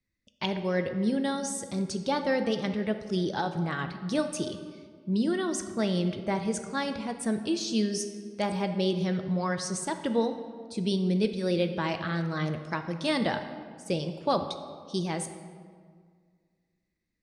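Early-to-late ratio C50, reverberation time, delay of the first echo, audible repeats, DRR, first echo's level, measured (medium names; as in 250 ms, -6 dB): 9.0 dB, 1.9 s, no echo, no echo, 7.0 dB, no echo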